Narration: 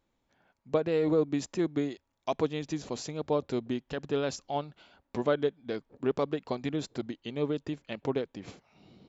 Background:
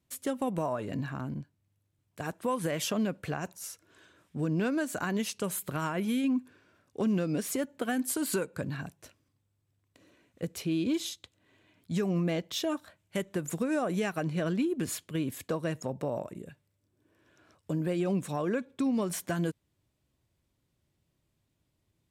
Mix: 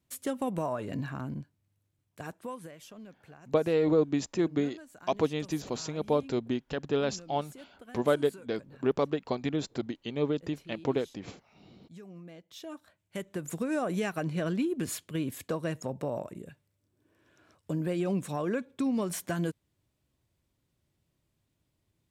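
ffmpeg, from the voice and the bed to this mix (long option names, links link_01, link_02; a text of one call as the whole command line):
ffmpeg -i stem1.wav -i stem2.wav -filter_complex "[0:a]adelay=2800,volume=1.5dB[link_01];[1:a]volume=17.5dB,afade=type=out:start_time=1.86:duration=0.89:silence=0.125893,afade=type=in:start_time=12.43:duration=1.39:silence=0.125893[link_02];[link_01][link_02]amix=inputs=2:normalize=0" out.wav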